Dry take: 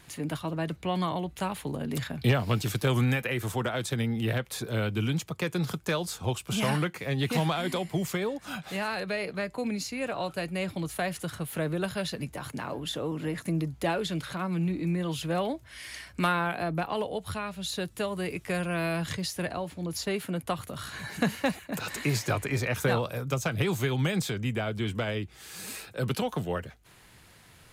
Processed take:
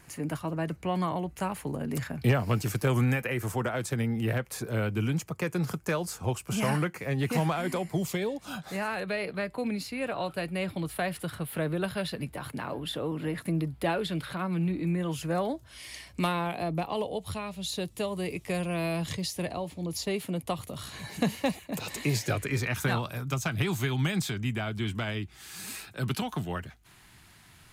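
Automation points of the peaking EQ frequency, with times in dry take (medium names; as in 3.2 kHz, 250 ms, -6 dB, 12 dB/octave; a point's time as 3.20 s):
peaking EQ -11 dB 0.48 oct
7.87 s 3.6 kHz
8.20 s 1.1 kHz
9.14 s 6.4 kHz
14.77 s 6.4 kHz
15.91 s 1.5 kHz
22.09 s 1.5 kHz
22.72 s 500 Hz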